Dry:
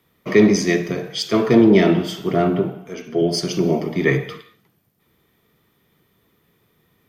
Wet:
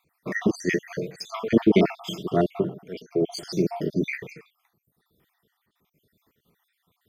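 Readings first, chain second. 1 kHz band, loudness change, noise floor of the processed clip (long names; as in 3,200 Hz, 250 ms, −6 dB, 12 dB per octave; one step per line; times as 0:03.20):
−6.0 dB, −7.5 dB, −77 dBFS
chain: time-frequency cells dropped at random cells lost 58%
amplitude modulation by smooth noise, depth 60%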